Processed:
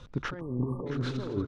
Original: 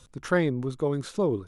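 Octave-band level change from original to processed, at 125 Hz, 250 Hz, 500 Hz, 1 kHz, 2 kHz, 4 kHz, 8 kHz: −1.5 dB, −4.5 dB, −10.0 dB, −7.0 dB, −7.0 dB, −1.5 dB, can't be measured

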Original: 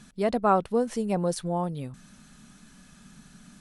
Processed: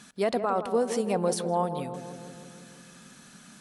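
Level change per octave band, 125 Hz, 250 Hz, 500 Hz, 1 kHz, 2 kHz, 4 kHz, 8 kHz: −4.0, −3.0, +0.5, −2.0, 0.0, +3.0, +3.5 decibels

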